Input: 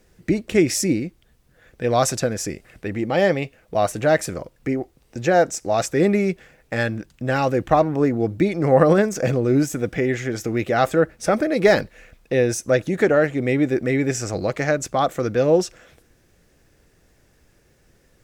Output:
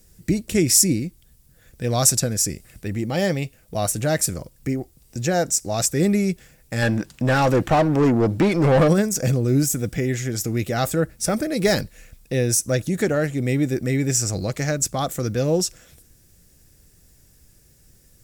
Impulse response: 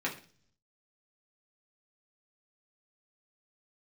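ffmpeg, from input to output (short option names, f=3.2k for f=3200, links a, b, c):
-filter_complex "[0:a]bass=f=250:g=11,treble=f=4k:g=10,asplit=3[a][b][c];[a]afade=t=out:st=6.81:d=0.02[d];[b]asplit=2[e][f];[f]highpass=f=720:p=1,volume=24dB,asoftclip=type=tanh:threshold=-2.5dB[g];[e][g]amix=inputs=2:normalize=0,lowpass=f=1.3k:p=1,volume=-6dB,afade=t=in:st=6.81:d=0.02,afade=t=out:st=8.87:d=0.02[h];[c]afade=t=in:st=8.87:d=0.02[i];[d][h][i]amix=inputs=3:normalize=0,aemphasis=mode=production:type=cd,bandreject=f=6.3k:w=23,volume=-6dB"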